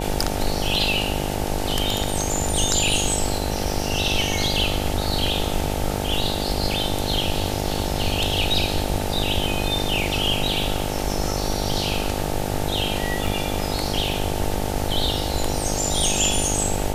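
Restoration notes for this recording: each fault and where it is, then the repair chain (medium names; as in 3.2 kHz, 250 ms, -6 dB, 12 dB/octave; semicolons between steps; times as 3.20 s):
buzz 50 Hz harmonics 18 -27 dBFS
13.27 s: dropout 2.5 ms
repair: de-hum 50 Hz, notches 18; interpolate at 13.27 s, 2.5 ms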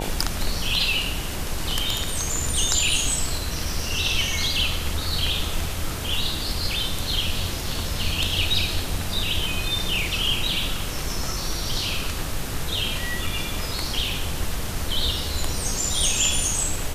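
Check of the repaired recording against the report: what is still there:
nothing left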